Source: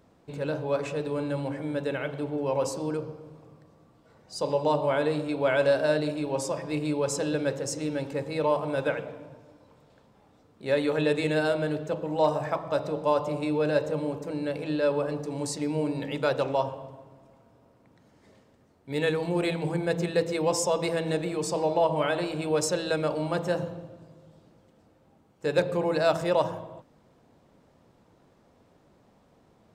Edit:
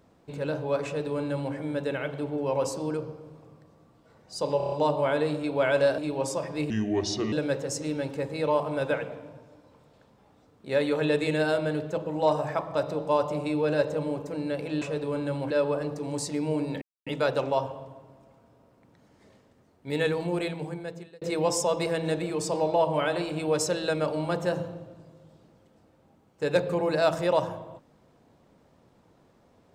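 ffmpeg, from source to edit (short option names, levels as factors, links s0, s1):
-filter_complex "[0:a]asplit=13[s0][s1][s2][s3][s4][s5][s6][s7][s8][s9][s10][s11][s12];[s0]atrim=end=4.602[s13];[s1]atrim=start=4.568:end=4.602[s14];[s2]atrim=start=4.568:end=4.602[s15];[s3]atrim=start=4.568:end=4.602[s16];[s4]atrim=start=4.568:end=4.602[s17];[s5]atrim=start=4.568:end=5.832[s18];[s6]atrim=start=6.118:end=6.844[s19];[s7]atrim=start=6.84:end=7.29,asetpts=PTS-STARTPTS,asetrate=31752,aresample=44100,atrim=end_sample=27562,asetpts=PTS-STARTPTS[s20];[s8]atrim=start=7.286:end=14.782[s21];[s9]atrim=start=0.848:end=1.542[s22];[s10]atrim=start=14.778:end=16.09,asetpts=PTS-STARTPTS,afade=t=out:st=1.308:d=0.004:c=hsin,apad=pad_dur=0.25[s23];[s11]atrim=start=16.09:end=20.24,asetpts=PTS-STARTPTS,afade=t=in:d=0.004:c=hsin,afade=t=out:st=3.07:d=1.08[s24];[s12]atrim=start=20.24,asetpts=PTS-STARTPTS,afade=t=in:d=0.004:c=hsin[s25];[s13][s14]acrossfade=d=0.004:c1=hsin:c2=hsin[s26];[s26][s15]acrossfade=d=0.004:c1=hsin:c2=hsin[s27];[s27][s16]acrossfade=d=0.004:c1=hsin:c2=hsin[s28];[s28][s17]acrossfade=d=0.004:c1=hsin:c2=hsin[s29];[s29][s18]acrossfade=d=0.004:c1=hsin:c2=hsin[s30];[s30][s19]acrossfade=d=0.004:c1=hsin:c2=hsin[s31];[s31][s20]acrossfade=d=0.004:c1=hsin:c2=hsin[s32];[s32][s21]acrossfade=d=0.004:c1=hsin:c2=hsin[s33];[s33][s22]acrossfade=d=0.004:c1=hsin:c2=hsin[s34];[s23][s24][s25]concat=n=3:v=0:a=1[s35];[s34][s35]acrossfade=d=0.004:c1=hsin:c2=hsin"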